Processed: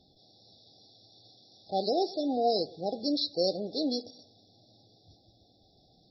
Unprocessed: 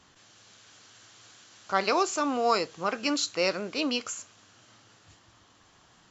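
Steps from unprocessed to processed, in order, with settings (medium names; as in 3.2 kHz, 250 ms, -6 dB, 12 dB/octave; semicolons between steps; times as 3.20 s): feedback echo behind a low-pass 113 ms, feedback 37%, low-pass 750 Hz, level -20.5 dB; FFT band-reject 820–3400 Hz; MP3 16 kbps 24 kHz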